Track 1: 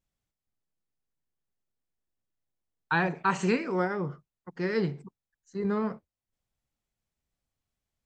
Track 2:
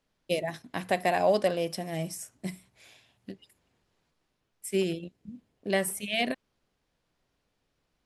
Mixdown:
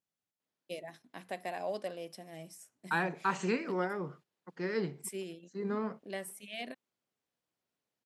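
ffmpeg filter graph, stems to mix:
ffmpeg -i stem1.wav -i stem2.wav -filter_complex "[0:a]volume=-5dB,asplit=2[link_01][link_02];[1:a]adelay=400,volume=-2dB[link_03];[link_02]apad=whole_len=372677[link_04];[link_03][link_04]sidechaingate=range=-11dB:threshold=-53dB:ratio=16:detection=peak[link_05];[link_01][link_05]amix=inputs=2:normalize=0,highpass=180" out.wav

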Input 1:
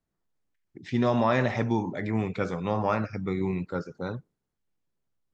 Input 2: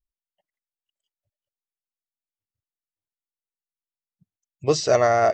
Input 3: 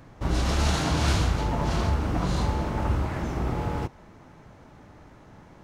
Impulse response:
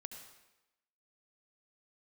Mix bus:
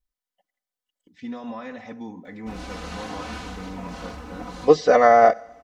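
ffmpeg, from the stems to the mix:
-filter_complex "[0:a]agate=range=-33dB:threshold=-41dB:ratio=3:detection=peak,alimiter=limit=-16.5dB:level=0:latency=1:release=241,adelay=300,volume=-11.5dB,asplit=2[link_01][link_02];[link_02]volume=-13.5dB[link_03];[1:a]bass=frequency=250:gain=-3,treble=frequency=4000:gain=-3,bandreject=frequency=2600:width=6.2,volume=2dB,asplit=3[link_04][link_05][link_06];[link_05]volume=-14dB[link_07];[2:a]lowshelf=frequency=180:gain=-11,adelay=2250,volume=-9dB[link_08];[link_06]apad=whole_len=347551[link_09];[link_08][link_09]sidechaincompress=threshold=-35dB:ratio=12:attack=31:release=683[link_10];[3:a]atrim=start_sample=2205[link_11];[link_03][link_07]amix=inputs=2:normalize=0[link_12];[link_12][link_11]afir=irnorm=-1:irlink=0[link_13];[link_01][link_04][link_10][link_13]amix=inputs=4:normalize=0,acrossover=split=3500[link_14][link_15];[link_15]acompressor=threshold=-49dB:ratio=4:attack=1:release=60[link_16];[link_14][link_16]amix=inputs=2:normalize=0,aecho=1:1:4:0.96"

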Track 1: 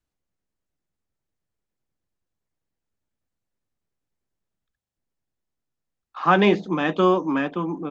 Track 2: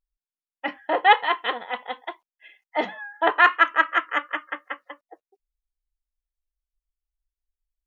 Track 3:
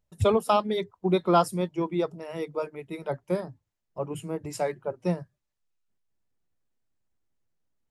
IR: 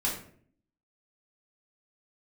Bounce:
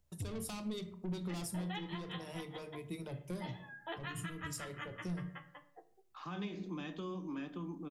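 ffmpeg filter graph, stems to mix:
-filter_complex "[0:a]volume=-11.5dB,asplit=2[link_01][link_02];[link_02]volume=-17.5dB[link_03];[1:a]highpass=250,asplit=2[link_04][link_05];[link_05]adelay=11,afreqshift=0.56[link_06];[link_04][link_06]amix=inputs=2:normalize=1,adelay=650,volume=1dB,asplit=2[link_07][link_08];[link_08]volume=-22.5dB[link_09];[2:a]equalizer=frequency=73:width=0.6:gain=5,asoftclip=type=tanh:threshold=-26dB,bandreject=frequency=50:width_type=h:width=6,bandreject=frequency=100:width_type=h:width=6,bandreject=frequency=150:width_type=h:width=6,volume=-0.5dB,asplit=3[link_10][link_11][link_12];[link_11]volume=-18.5dB[link_13];[link_12]apad=whole_len=375825[link_14];[link_07][link_14]sidechaincompress=threshold=-45dB:ratio=3:attack=16:release=994[link_15];[link_01][link_10]amix=inputs=2:normalize=0,highshelf=frequency=5000:gain=5.5,acompressor=threshold=-36dB:ratio=6,volume=0dB[link_16];[3:a]atrim=start_sample=2205[link_17];[link_03][link_09][link_13]amix=inputs=3:normalize=0[link_18];[link_18][link_17]afir=irnorm=-1:irlink=0[link_19];[link_15][link_16][link_19]amix=inputs=3:normalize=0,acrossover=split=280|3000[link_20][link_21][link_22];[link_21]acompressor=threshold=-57dB:ratio=2[link_23];[link_20][link_23][link_22]amix=inputs=3:normalize=0,alimiter=level_in=7.5dB:limit=-24dB:level=0:latency=1:release=162,volume=-7.5dB"

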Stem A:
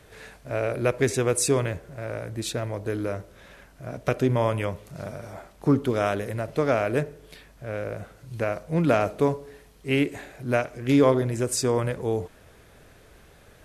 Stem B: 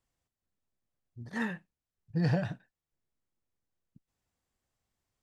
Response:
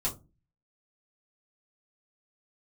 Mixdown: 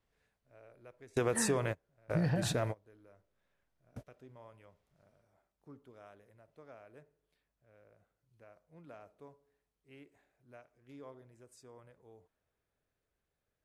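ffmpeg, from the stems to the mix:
-filter_complex "[0:a]adynamicequalizer=threshold=0.02:dfrequency=930:dqfactor=0.75:tfrequency=930:tqfactor=0.75:attack=5:release=100:ratio=0.375:range=2.5:mode=boostabove:tftype=bell,volume=-3.5dB[link_01];[1:a]lowpass=4100,volume=2.5dB,asplit=2[link_02][link_03];[link_03]apad=whole_len=601815[link_04];[link_01][link_04]sidechaingate=range=-31dB:threshold=-57dB:ratio=16:detection=peak[link_05];[link_05][link_02]amix=inputs=2:normalize=0,acompressor=threshold=-28dB:ratio=6"

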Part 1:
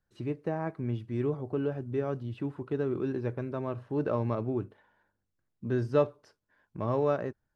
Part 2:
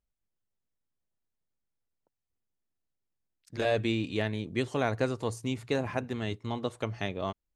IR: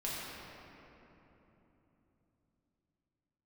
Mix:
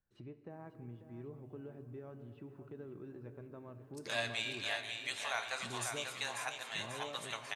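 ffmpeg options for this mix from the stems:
-filter_complex "[0:a]bass=frequency=250:gain=1,treble=frequency=4000:gain=-7,acompressor=threshold=-47dB:ratio=2,volume=-9dB,asplit=3[link_01][link_02][link_03];[link_02]volume=-13.5dB[link_04];[link_03]volume=-11.5dB[link_05];[1:a]highpass=frequency=800:width=0.5412,highpass=frequency=800:width=1.3066,highshelf=frequency=4000:gain=12,flanger=delay=6:depth=8.9:regen=64:speed=0.32:shape=sinusoidal,adelay=500,volume=-2.5dB,asplit=3[link_06][link_07][link_08];[link_07]volume=-9dB[link_09];[link_08]volume=-4.5dB[link_10];[2:a]atrim=start_sample=2205[link_11];[link_04][link_09]amix=inputs=2:normalize=0[link_12];[link_12][link_11]afir=irnorm=-1:irlink=0[link_13];[link_05][link_10]amix=inputs=2:normalize=0,aecho=0:1:541|1082|1623|2164|2705|3246|3787:1|0.49|0.24|0.118|0.0576|0.0282|0.0138[link_14];[link_01][link_06][link_13][link_14]amix=inputs=4:normalize=0"

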